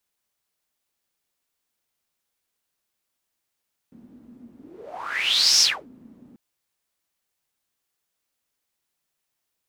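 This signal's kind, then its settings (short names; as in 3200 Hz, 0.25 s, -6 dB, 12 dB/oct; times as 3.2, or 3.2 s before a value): whoosh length 2.44 s, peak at 1.69, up 1.12 s, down 0.28 s, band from 240 Hz, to 5500 Hz, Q 9.5, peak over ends 32 dB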